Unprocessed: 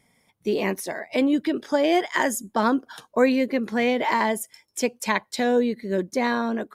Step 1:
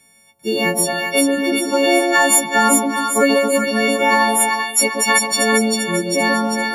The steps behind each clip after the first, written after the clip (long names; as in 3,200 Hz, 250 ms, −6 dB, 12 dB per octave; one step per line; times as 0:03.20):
every partial snapped to a pitch grid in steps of 4 semitones
echo with a time of its own for lows and highs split 930 Hz, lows 135 ms, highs 394 ms, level −3 dB
level +3.5 dB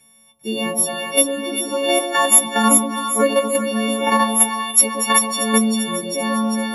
parametric band 4,100 Hz −3.5 dB 0.35 octaves
in parallel at +3 dB: output level in coarse steps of 14 dB
on the sum: stiff-string resonator 74 Hz, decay 0.23 s, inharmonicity 0.002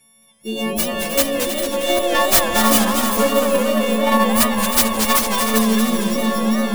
stylus tracing distortion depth 0.38 ms
delay that swaps between a low-pass and a high-pass 158 ms, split 880 Hz, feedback 64%, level −6.5 dB
feedback echo with a swinging delay time 226 ms, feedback 65%, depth 179 cents, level −6.5 dB
level −1.5 dB